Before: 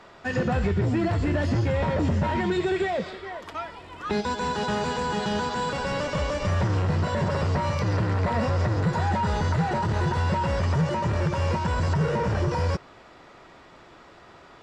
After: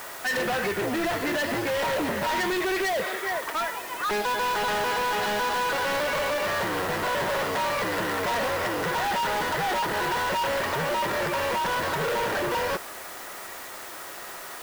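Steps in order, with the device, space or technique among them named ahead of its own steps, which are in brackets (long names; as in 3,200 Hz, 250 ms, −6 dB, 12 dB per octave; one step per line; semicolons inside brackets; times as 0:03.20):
drive-through speaker (band-pass filter 440–3,400 Hz; parametric band 1,800 Hz +5 dB 0.5 octaves; hard clipping −33 dBFS, distortion −7 dB; white noise bed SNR 15 dB)
level +8.5 dB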